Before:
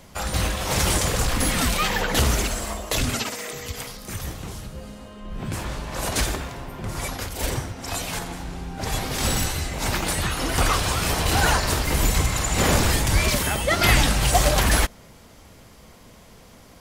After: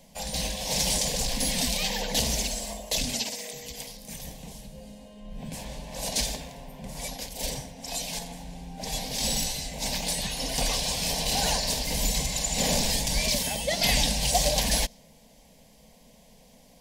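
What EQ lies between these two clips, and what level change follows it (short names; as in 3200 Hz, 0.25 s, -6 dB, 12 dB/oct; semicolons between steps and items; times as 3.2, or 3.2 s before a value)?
dynamic EQ 4900 Hz, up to +7 dB, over -40 dBFS, Q 1.1; fixed phaser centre 350 Hz, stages 6; -4.5 dB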